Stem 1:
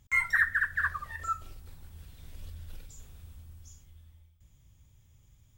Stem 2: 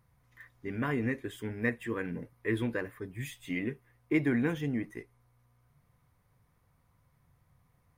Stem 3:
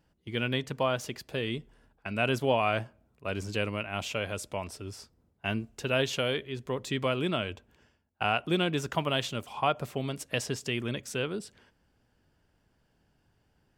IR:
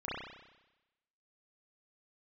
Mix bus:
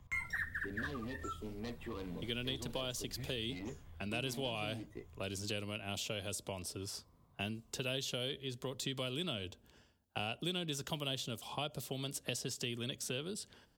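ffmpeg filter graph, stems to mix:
-filter_complex "[0:a]volume=3dB[a];[1:a]equalizer=f=1.1k:w=3.3:g=11,asoftclip=type=hard:threshold=-32dB,equalizer=f=630:t=o:w=0.67:g=6,equalizer=f=1.6k:t=o:w=0.67:g=-9,equalizer=f=4k:t=o:w=0.67:g=7,volume=-3.5dB[b];[2:a]aexciter=amount=3.7:drive=6.1:freq=3.2k,adelay=1950,volume=-0.5dB[c];[a][b][c]amix=inputs=3:normalize=0,highshelf=f=4.7k:g=-11,acrossover=split=120|620|2800[d][e][f][g];[d]acompressor=threshold=-52dB:ratio=4[h];[e]acompressor=threshold=-42dB:ratio=4[i];[f]acompressor=threshold=-52dB:ratio=4[j];[g]acompressor=threshold=-38dB:ratio=4[k];[h][i][j][k]amix=inputs=4:normalize=0,equalizer=f=6.3k:w=0.56:g=-2.5"

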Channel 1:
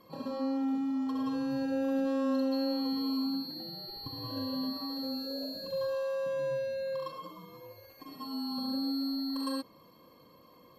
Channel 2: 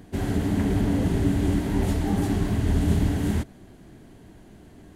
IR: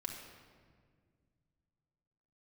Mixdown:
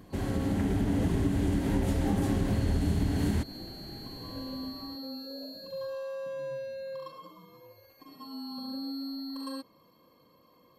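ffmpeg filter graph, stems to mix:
-filter_complex "[0:a]volume=-4dB[a];[1:a]dynaudnorm=f=360:g=5:m=11.5dB,volume=-5.5dB[b];[a][b]amix=inputs=2:normalize=0,acompressor=threshold=-24dB:ratio=6"

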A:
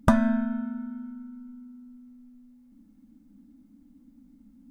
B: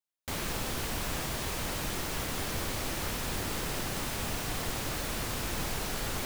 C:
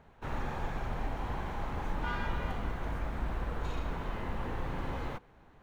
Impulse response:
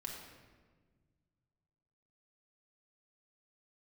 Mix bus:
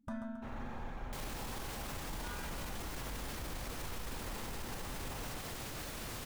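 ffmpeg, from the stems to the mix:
-filter_complex "[0:a]volume=-18.5dB,asplit=2[a][b];[b]volume=-13.5dB[c];[1:a]alimiter=level_in=6dB:limit=-24dB:level=0:latency=1,volume=-6dB,adelay=850,volume=-4dB[d];[2:a]adelay=200,volume=-11dB,asplit=2[e][f];[f]volume=-4dB[g];[3:a]atrim=start_sample=2205[h];[g][h]afir=irnorm=-1:irlink=0[i];[c]aecho=0:1:136|272|408|544|680:1|0.36|0.13|0.0467|0.0168[j];[a][d][e][i][j]amix=inputs=5:normalize=0,alimiter=level_in=9dB:limit=-24dB:level=0:latency=1:release=12,volume=-9dB"

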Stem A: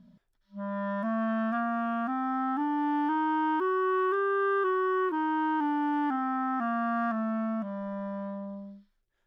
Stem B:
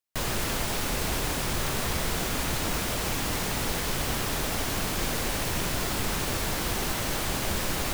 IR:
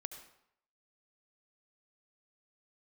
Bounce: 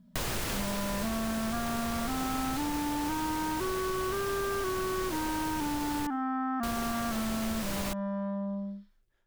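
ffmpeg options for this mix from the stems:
-filter_complex "[0:a]lowshelf=f=320:g=4.5,dynaudnorm=f=160:g=3:m=9dB,volume=-5.5dB[a];[1:a]volume=0dB,asplit=3[b][c][d];[b]atrim=end=6.07,asetpts=PTS-STARTPTS,afade=t=out:st=6.066:d=0.004:c=hsin[e];[c]atrim=start=6.07:end=6.63,asetpts=PTS-STARTPTS,volume=0[f];[d]atrim=start=6.63,asetpts=PTS-STARTPTS,afade=t=in:d=0.004:c=hsin[g];[e][f][g]concat=n=3:v=0:a=1,asplit=2[h][i];[i]volume=-19dB[j];[2:a]atrim=start_sample=2205[k];[j][k]afir=irnorm=-1:irlink=0[l];[a][h][l]amix=inputs=3:normalize=0,acompressor=threshold=-29dB:ratio=6"

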